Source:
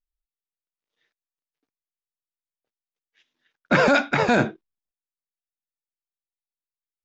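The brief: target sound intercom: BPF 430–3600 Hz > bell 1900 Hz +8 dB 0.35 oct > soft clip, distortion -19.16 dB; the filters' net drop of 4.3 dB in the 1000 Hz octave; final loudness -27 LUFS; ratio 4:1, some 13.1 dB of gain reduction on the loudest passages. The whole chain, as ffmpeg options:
-af "equalizer=f=1k:t=o:g=-7,acompressor=threshold=-32dB:ratio=4,highpass=430,lowpass=3.6k,equalizer=f=1.9k:t=o:w=0.35:g=8,asoftclip=threshold=-24.5dB,volume=9dB"

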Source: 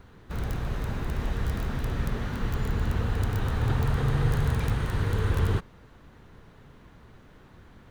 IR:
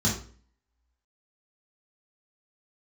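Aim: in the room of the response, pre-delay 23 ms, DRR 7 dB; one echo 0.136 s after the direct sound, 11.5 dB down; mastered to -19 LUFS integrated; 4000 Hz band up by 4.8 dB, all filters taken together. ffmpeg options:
-filter_complex "[0:a]equalizer=f=4k:t=o:g=6,aecho=1:1:136:0.266,asplit=2[a][b];[1:a]atrim=start_sample=2205,adelay=23[c];[b][c]afir=irnorm=-1:irlink=0,volume=-17.5dB[d];[a][d]amix=inputs=2:normalize=0,volume=1.5dB"

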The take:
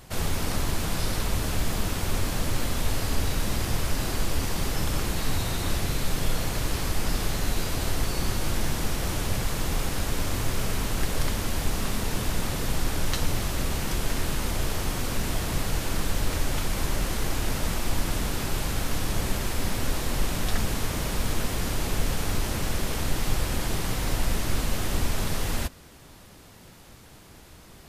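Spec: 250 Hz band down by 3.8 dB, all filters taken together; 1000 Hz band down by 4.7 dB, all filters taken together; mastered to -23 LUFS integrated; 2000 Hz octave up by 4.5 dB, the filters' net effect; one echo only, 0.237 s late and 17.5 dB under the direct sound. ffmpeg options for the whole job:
-af "equalizer=f=250:t=o:g=-5,equalizer=f=1k:t=o:g=-8.5,equalizer=f=2k:t=o:g=8,aecho=1:1:237:0.133,volume=6dB"

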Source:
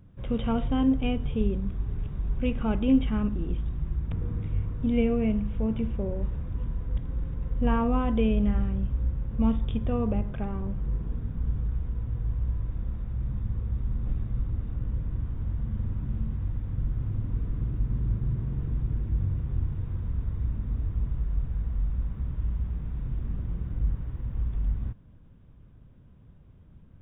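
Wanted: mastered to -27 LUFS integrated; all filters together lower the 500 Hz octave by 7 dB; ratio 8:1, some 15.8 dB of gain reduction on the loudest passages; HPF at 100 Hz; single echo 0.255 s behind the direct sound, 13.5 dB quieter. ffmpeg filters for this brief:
-af "highpass=100,equalizer=f=500:t=o:g=-8,acompressor=threshold=-36dB:ratio=8,aecho=1:1:255:0.211,volume=14.5dB"

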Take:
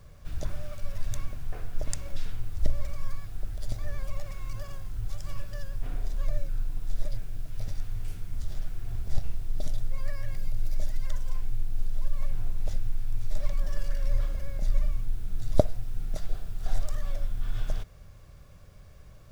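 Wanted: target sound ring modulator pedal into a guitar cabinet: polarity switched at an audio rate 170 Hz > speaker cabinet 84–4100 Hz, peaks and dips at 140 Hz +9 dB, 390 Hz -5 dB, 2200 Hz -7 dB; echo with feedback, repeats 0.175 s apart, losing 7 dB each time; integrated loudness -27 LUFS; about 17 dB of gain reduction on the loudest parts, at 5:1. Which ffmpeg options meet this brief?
-af "acompressor=threshold=-34dB:ratio=5,aecho=1:1:175|350|525|700|875:0.447|0.201|0.0905|0.0407|0.0183,aeval=exprs='val(0)*sgn(sin(2*PI*170*n/s))':c=same,highpass=84,equalizer=f=140:t=q:w=4:g=9,equalizer=f=390:t=q:w=4:g=-5,equalizer=f=2.2k:t=q:w=4:g=-7,lowpass=f=4.1k:w=0.5412,lowpass=f=4.1k:w=1.3066,volume=4.5dB"

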